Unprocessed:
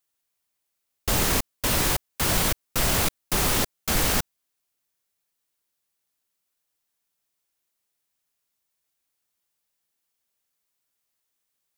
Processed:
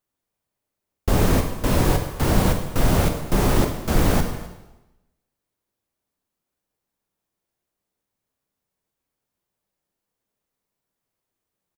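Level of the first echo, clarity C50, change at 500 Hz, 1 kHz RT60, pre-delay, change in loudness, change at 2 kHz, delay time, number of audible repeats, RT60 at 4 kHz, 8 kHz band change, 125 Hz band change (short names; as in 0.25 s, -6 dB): -19.0 dB, 6.5 dB, +7.0 dB, 1.0 s, 7 ms, +1.5 dB, -1.5 dB, 0.258 s, 1, 0.95 s, -6.0 dB, +9.5 dB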